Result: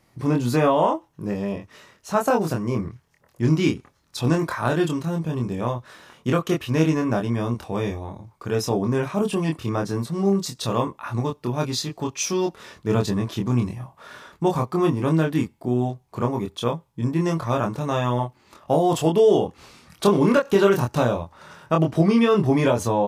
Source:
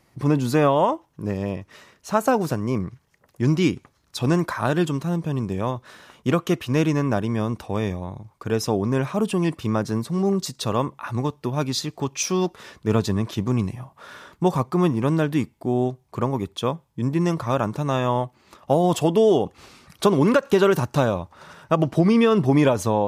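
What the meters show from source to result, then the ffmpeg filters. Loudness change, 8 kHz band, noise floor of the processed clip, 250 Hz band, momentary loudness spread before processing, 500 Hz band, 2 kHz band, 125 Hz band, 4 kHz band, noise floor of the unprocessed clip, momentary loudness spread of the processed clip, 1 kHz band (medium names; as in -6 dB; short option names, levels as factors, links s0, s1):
0.0 dB, -0.5 dB, -61 dBFS, -0.5 dB, 11 LU, 0.0 dB, 0.0 dB, -0.5 dB, -0.5 dB, -62 dBFS, 11 LU, 0.0 dB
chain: -filter_complex "[0:a]asplit=2[s0][s1];[s1]adelay=25,volume=0.708[s2];[s0][s2]amix=inputs=2:normalize=0,volume=0.794"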